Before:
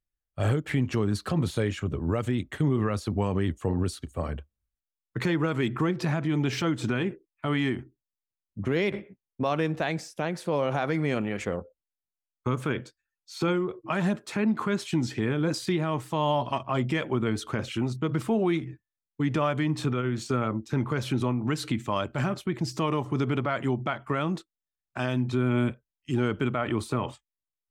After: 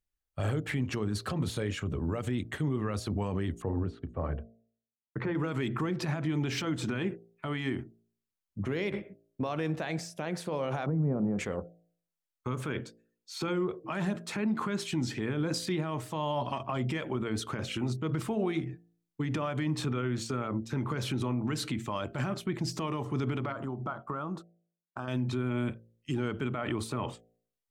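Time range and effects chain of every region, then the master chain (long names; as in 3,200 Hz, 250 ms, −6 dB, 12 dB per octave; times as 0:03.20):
0:03.62–0:05.35: low-pass filter 1,500 Hz + downward expander −57 dBFS + mains-hum notches 60/120/180/240 Hz
0:10.86–0:11.39: low-pass filter 1,000 Hz 24 dB per octave + parametric band 170 Hz +13.5 dB 0.61 octaves
0:23.52–0:25.08: downward compressor, threshold −32 dBFS + downward expander −43 dBFS + high shelf with overshoot 1,600 Hz −7.5 dB, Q 3
whole clip: brickwall limiter −22.5 dBFS; hum removal 56.83 Hz, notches 13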